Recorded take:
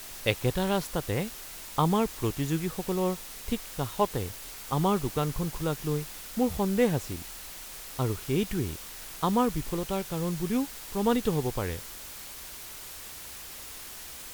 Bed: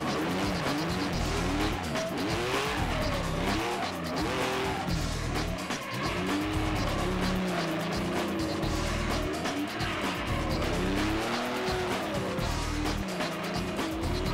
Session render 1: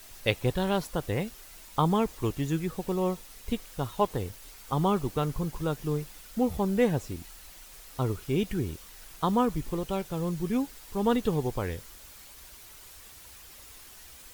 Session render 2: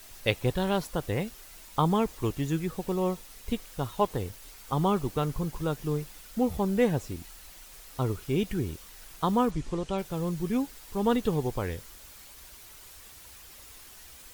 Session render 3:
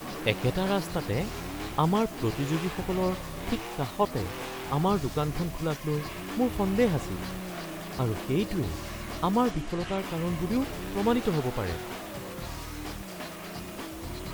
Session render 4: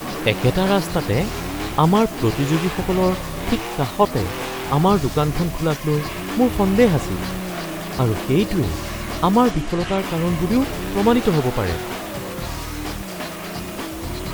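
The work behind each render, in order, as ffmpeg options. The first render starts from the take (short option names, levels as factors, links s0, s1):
-af "afftdn=nr=8:nf=-43"
-filter_complex "[0:a]asplit=3[s0][s1][s2];[s0]afade=t=out:st=9.5:d=0.02[s3];[s1]lowpass=f=8300:w=0.5412,lowpass=f=8300:w=1.3066,afade=t=in:st=9.5:d=0.02,afade=t=out:st=9.97:d=0.02[s4];[s2]afade=t=in:st=9.97:d=0.02[s5];[s3][s4][s5]amix=inputs=3:normalize=0"
-filter_complex "[1:a]volume=0.422[s0];[0:a][s0]amix=inputs=2:normalize=0"
-af "volume=2.99,alimiter=limit=0.708:level=0:latency=1"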